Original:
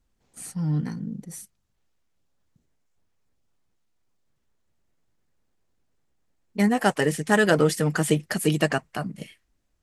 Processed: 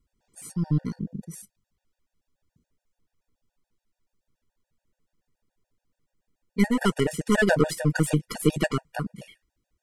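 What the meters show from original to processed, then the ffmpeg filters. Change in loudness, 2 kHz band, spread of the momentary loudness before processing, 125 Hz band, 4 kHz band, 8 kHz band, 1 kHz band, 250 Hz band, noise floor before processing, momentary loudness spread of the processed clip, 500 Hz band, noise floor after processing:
-2.0 dB, -2.5 dB, 17 LU, 0.0 dB, -2.5 dB, -3.0 dB, -5.0 dB, -0.5 dB, -72 dBFS, 15 LU, -2.5 dB, under -85 dBFS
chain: -af "equalizer=f=160:t=o:w=2.9:g=2.5,aeval=exprs='0.562*(cos(1*acos(clip(val(0)/0.562,-1,1)))-cos(1*PI/2))+0.0447*(cos(6*acos(clip(val(0)/0.562,-1,1)))-cos(6*PI/2))':c=same,afftfilt=real='re*gt(sin(2*PI*7*pts/sr)*(1-2*mod(floor(b*sr/1024/480),2)),0)':imag='im*gt(sin(2*PI*7*pts/sr)*(1-2*mod(floor(b*sr/1024/480),2)),0)':win_size=1024:overlap=0.75"

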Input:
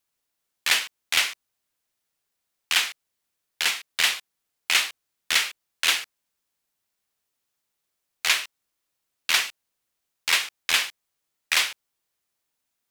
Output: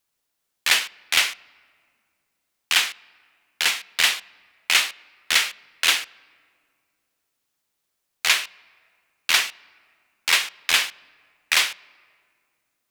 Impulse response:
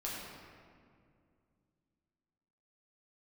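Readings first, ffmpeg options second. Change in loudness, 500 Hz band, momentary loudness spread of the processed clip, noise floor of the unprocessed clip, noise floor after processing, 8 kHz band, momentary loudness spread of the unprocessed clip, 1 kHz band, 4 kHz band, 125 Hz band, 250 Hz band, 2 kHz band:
+2.5 dB, +3.0 dB, 10 LU, -80 dBFS, -78 dBFS, +2.5 dB, 10 LU, +3.0 dB, +2.5 dB, n/a, +3.0 dB, +3.0 dB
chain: -filter_complex "[0:a]asplit=2[a][b];[1:a]atrim=start_sample=2205,lowpass=5.5k[c];[b][c]afir=irnorm=-1:irlink=0,volume=-24dB[d];[a][d]amix=inputs=2:normalize=0,volume=2.5dB"

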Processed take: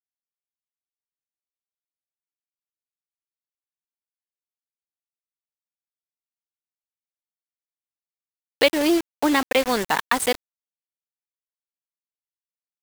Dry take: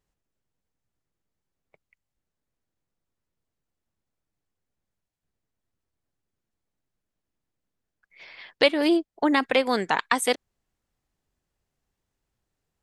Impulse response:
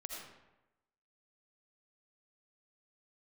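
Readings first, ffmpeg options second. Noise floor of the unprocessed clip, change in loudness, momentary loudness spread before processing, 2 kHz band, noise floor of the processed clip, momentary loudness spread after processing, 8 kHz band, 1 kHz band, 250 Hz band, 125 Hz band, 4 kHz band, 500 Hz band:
-85 dBFS, +2.0 dB, 4 LU, +1.5 dB, under -85 dBFS, 4 LU, +4.5 dB, +1.5 dB, +1.5 dB, n/a, +2.0 dB, +1.5 dB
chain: -af "acrusher=bits=4:mix=0:aa=0.000001,volume=1.5dB"

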